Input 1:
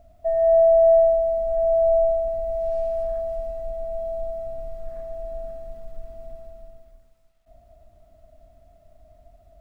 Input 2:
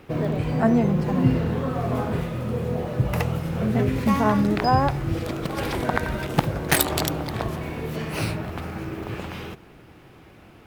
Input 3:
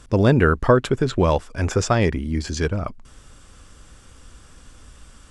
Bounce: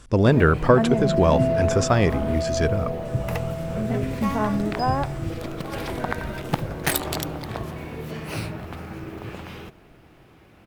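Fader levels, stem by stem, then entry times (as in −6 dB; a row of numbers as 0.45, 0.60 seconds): −9.0, −3.5, −1.0 decibels; 0.65, 0.15, 0.00 seconds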